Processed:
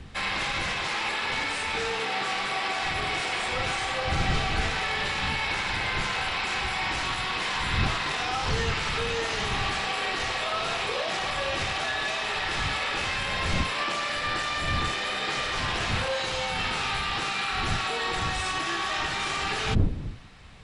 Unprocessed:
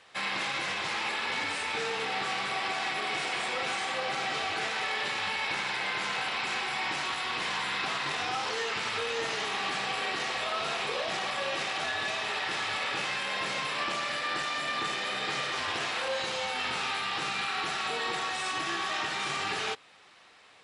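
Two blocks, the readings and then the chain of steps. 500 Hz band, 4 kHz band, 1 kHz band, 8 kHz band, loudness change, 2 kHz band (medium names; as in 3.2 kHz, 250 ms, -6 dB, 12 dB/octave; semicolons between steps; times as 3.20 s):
+3.0 dB, +3.0 dB, +3.0 dB, +3.0 dB, +3.5 dB, +3.0 dB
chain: wind noise 120 Hz -38 dBFS; trim +3 dB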